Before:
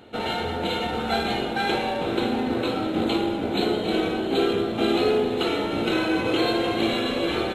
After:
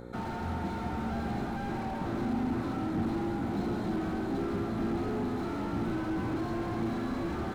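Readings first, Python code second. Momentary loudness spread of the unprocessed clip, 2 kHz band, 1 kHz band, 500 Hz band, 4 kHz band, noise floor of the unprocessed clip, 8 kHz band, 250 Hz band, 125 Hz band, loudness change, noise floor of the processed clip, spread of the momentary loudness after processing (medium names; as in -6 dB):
4 LU, -13.5 dB, -9.0 dB, -13.5 dB, -22.5 dB, -29 dBFS, under -10 dB, -6.0 dB, -0.5 dB, -9.0 dB, -36 dBFS, 3 LU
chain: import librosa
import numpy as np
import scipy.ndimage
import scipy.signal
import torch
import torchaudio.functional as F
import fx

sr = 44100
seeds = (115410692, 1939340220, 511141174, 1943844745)

y = fx.fixed_phaser(x, sr, hz=1200.0, stages=4)
y = fx.dmg_buzz(y, sr, base_hz=60.0, harmonics=9, level_db=-45.0, tilt_db=0, odd_only=False)
y = fx.slew_limit(y, sr, full_power_hz=13.0)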